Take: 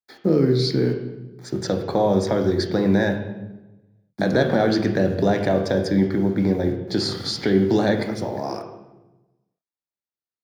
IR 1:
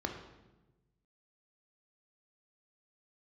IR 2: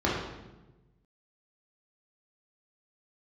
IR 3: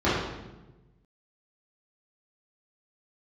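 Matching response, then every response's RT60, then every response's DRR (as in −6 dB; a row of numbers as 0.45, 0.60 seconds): 1; 1.1, 1.1, 1.1 seconds; 3.5, −5.5, −11.5 decibels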